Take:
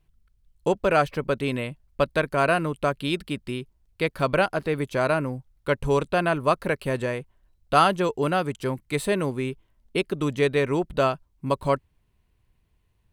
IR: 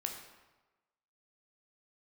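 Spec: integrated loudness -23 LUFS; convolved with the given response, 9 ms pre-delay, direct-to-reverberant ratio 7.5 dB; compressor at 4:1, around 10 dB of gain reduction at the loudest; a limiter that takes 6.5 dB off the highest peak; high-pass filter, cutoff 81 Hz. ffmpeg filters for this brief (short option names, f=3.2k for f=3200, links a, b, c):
-filter_complex "[0:a]highpass=81,acompressor=threshold=-25dB:ratio=4,alimiter=limit=-20.5dB:level=0:latency=1,asplit=2[a][b];[1:a]atrim=start_sample=2205,adelay=9[c];[b][c]afir=irnorm=-1:irlink=0,volume=-8dB[d];[a][d]amix=inputs=2:normalize=0,volume=9dB"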